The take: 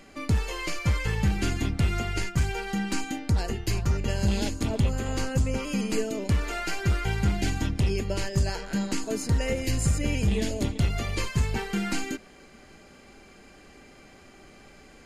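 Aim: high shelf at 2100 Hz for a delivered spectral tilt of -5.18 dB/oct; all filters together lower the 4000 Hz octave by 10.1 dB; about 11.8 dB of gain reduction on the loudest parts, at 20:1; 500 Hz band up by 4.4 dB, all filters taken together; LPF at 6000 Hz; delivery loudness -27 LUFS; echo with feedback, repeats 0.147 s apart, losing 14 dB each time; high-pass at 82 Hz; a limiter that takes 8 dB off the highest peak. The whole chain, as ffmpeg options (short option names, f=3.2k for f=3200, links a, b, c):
-af "highpass=82,lowpass=6k,equalizer=f=500:t=o:g=6,highshelf=f=2.1k:g=-8.5,equalizer=f=4k:t=o:g=-4.5,acompressor=threshold=-32dB:ratio=20,alimiter=level_in=5dB:limit=-24dB:level=0:latency=1,volume=-5dB,aecho=1:1:147|294:0.2|0.0399,volume=12dB"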